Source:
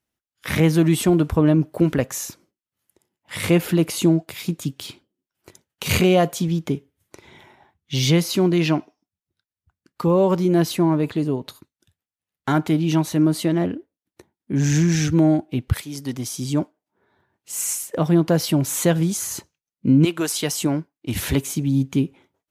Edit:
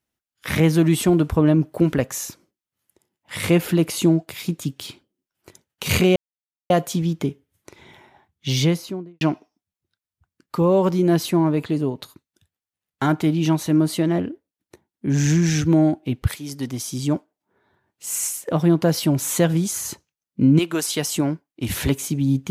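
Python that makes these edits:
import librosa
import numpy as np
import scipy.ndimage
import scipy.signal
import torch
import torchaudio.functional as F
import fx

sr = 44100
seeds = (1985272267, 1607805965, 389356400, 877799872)

y = fx.studio_fade_out(x, sr, start_s=7.95, length_s=0.72)
y = fx.edit(y, sr, fx.insert_silence(at_s=6.16, length_s=0.54), tone=tone)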